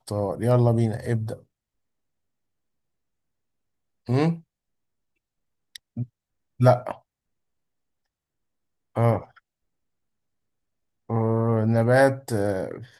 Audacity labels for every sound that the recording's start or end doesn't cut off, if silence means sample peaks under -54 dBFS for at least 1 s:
4.060000	4.420000	sound
5.750000	7.010000	sound
8.950000	9.390000	sound